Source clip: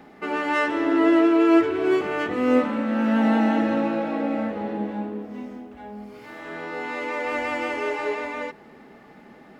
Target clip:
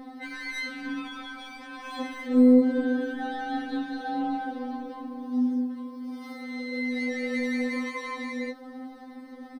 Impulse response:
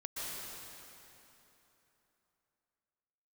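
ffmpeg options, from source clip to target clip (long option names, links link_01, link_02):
-af "aecho=1:1:4.1:0.73,acompressor=threshold=-19dB:ratio=10,asoftclip=type=tanh:threshold=-16dB,afftfilt=real='re*3.46*eq(mod(b,12),0)':imag='im*3.46*eq(mod(b,12),0)':win_size=2048:overlap=0.75,volume=2.5dB"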